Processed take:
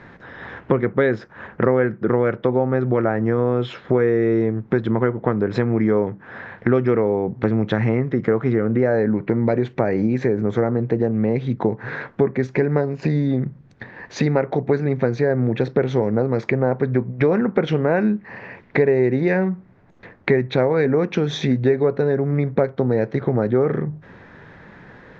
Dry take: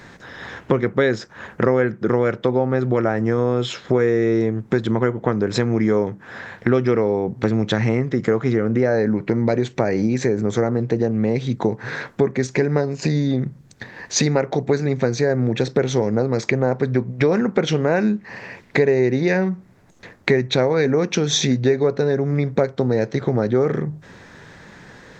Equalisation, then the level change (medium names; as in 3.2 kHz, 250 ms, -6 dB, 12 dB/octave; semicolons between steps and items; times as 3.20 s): low-pass 2.3 kHz 12 dB/octave; 0.0 dB